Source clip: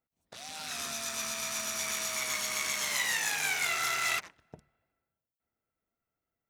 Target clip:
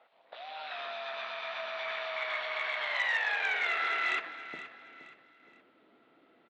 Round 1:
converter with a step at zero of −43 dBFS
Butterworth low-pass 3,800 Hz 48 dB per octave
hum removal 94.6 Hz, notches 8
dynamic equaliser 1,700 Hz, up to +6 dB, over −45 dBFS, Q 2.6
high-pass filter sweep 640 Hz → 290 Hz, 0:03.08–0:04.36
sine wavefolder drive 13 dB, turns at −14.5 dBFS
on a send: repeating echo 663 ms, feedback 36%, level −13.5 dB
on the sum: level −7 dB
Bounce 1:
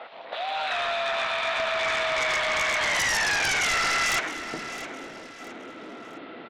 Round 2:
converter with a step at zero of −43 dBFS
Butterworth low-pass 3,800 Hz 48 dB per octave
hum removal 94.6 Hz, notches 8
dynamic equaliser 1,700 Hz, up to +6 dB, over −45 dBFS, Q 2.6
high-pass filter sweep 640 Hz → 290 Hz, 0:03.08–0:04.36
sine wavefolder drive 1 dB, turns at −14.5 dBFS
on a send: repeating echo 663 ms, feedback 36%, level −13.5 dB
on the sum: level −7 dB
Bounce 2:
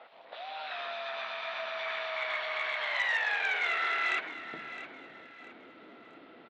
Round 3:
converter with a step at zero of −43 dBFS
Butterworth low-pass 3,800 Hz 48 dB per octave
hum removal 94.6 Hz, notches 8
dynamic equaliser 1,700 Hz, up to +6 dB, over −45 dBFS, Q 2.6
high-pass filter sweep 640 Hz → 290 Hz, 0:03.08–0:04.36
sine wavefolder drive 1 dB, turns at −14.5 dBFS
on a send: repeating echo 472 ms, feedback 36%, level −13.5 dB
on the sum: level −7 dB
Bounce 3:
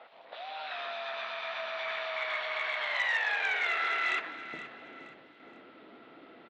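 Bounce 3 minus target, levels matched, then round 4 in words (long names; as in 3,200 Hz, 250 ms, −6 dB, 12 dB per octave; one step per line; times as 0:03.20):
converter with a step at zero: distortion +11 dB
converter with a step at zero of −54.5 dBFS
Butterworth low-pass 3,800 Hz 48 dB per octave
hum removal 94.6 Hz, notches 8
dynamic equaliser 1,700 Hz, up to +6 dB, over −45 dBFS, Q 2.6
high-pass filter sweep 640 Hz → 290 Hz, 0:03.08–0:04.36
sine wavefolder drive 1 dB, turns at −14.5 dBFS
on a send: repeating echo 472 ms, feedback 36%, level −13.5 dB
on the sum: level −7 dB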